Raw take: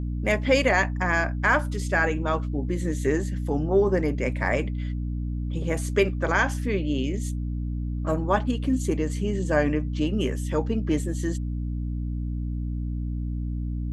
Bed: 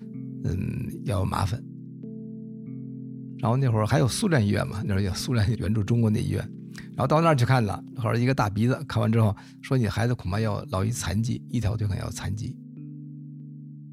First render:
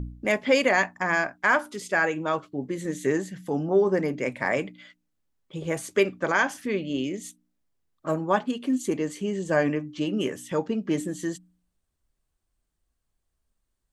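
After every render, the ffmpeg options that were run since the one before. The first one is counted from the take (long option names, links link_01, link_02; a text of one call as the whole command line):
ffmpeg -i in.wav -af "bandreject=frequency=60:width_type=h:width=4,bandreject=frequency=120:width_type=h:width=4,bandreject=frequency=180:width_type=h:width=4,bandreject=frequency=240:width_type=h:width=4,bandreject=frequency=300:width_type=h:width=4" out.wav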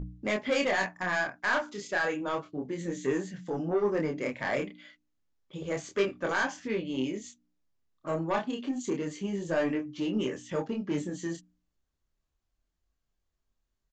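ffmpeg -i in.wav -af "aresample=16000,asoftclip=type=tanh:threshold=-18dB,aresample=44100,flanger=delay=22.5:depth=7.5:speed=0.3" out.wav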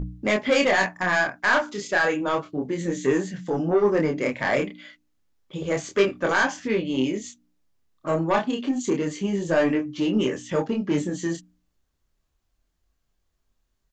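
ffmpeg -i in.wav -af "volume=7.5dB" out.wav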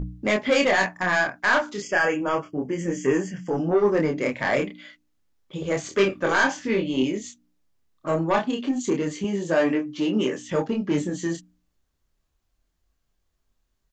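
ffmpeg -i in.wav -filter_complex "[0:a]asettb=1/sr,asplit=3[link_01][link_02][link_03];[link_01]atrim=end=1.824[link_04];[link_02]atrim=start=1.82:end=3.58,asetpts=PTS-STARTPTS,afade=type=in:duration=0.004:curve=qsin,afade=type=out:start_time=1.756:duration=0.004:curve=qsin,asuperstop=centerf=3900:order=12:qfactor=3.1[link_05];[link_03]atrim=start=3.576[link_06];[link_04][link_05]acrossfade=duration=0.004:curve1=hsin:curve2=qsin[link_07];[link_07][link_06]acrossfade=duration=0.004:curve1=qsin:curve2=hsin,asettb=1/sr,asplit=3[link_08][link_09][link_10];[link_08]atrim=end=5.824[link_11];[link_09]atrim=start=5.82:end=7.03,asetpts=PTS-STARTPTS,afade=type=in:duration=0.004:curve=qsin,afade=type=out:start_time=1.206:duration=0.004:curve=qsin,asplit=2[link_12][link_13];[link_13]adelay=26,volume=-5.5dB[link_14];[link_12][link_14]amix=inputs=2:normalize=0,atrim=end_sample=53361[link_15];[link_10]atrim=start=7.026[link_16];[link_11][link_15]acrossfade=duration=0.004:curve1=hsin:curve2=qsin[link_17];[link_17][link_16]acrossfade=duration=0.004:curve1=qsin:curve2=hsin,asettb=1/sr,asplit=3[link_18][link_19][link_20];[link_18]atrim=end=9.244[link_21];[link_19]atrim=start=9.24:end=10.49,asetpts=PTS-STARTPTS,afade=type=in:duration=0.004:curve=qsin,afade=type=out:start_time=1.246:duration=0.004:curve=qsin,highpass=160[link_22];[link_20]atrim=start=10.486[link_23];[link_21][link_22]acrossfade=duration=0.004:curve1=hsin:curve2=qsin[link_24];[link_24][link_23]acrossfade=duration=0.004:curve1=qsin:curve2=hsin" out.wav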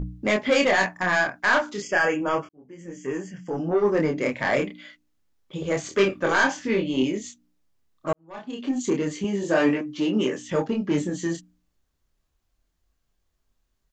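ffmpeg -i in.wav -filter_complex "[0:a]asettb=1/sr,asplit=3[link_01][link_02][link_03];[link_01]atrim=end=9.414[link_04];[link_02]atrim=start=9.41:end=9.81,asetpts=PTS-STARTPTS,afade=type=in:duration=0.004:curve=qsin,afade=type=out:start_time=0.396:duration=0.004:curve=qsin,asplit=2[link_05][link_06];[link_06]adelay=21,volume=-3dB[link_07];[link_05][link_07]amix=inputs=2:normalize=0,atrim=end_sample=17640[link_08];[link_03]atrim=start=9.806[link_09];[link_04][link_08]acrossfade=duration=0.004:curve1=hsin:curve2=qsin[link_10];[link_10][link_09]acrossfade=duration=0.004:curve1=qsin:curve2=hsin,asplit=3[link_11][link_12][link_13];[link_11]atrim=end=2.49,asetpts=PTS-STARTPTS,afade=type=out:start_time=2.486:duration=0.004:curve=hsin[link_14];[link_12]atrim=start=2.49:end=8.13,asetpts=PTS-STARTPTS,afade=type=in:duration=1.56,afade=type=out:start_time=5.636:duration=0.004:curve=hsin[link_15];[link_13]atrim=start=8.13,asetpts=PTS-STARTPTS,afade=type=in:duration=0.61:curve=qua[link_16];[link_14][link_15][link_16]concat=n=3:v=0:a=1" out.wav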